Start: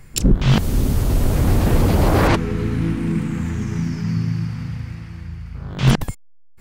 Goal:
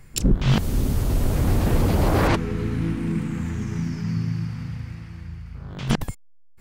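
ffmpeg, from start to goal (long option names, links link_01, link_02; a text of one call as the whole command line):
ffmpeg -i in.wav -filter_complex "[0:a]asplit=3[link_01][link_02][link_03];[link_01]afade=type=out:start_time=5.39:duration=0.02[link_04];[link_02]acompressor=threshold=-27dB:ratio=4,afade=type=in:start_time=5.39:duration=0.02,afade=type=out:start_time=5.89:duration=0.02[link_05];[link_03]afade=type=in:start_time=5.89:duration=0.02[link_06];[link_04][link_05][link_06]amix=inputs=3:normalize=0,volume=-4dB" out.wav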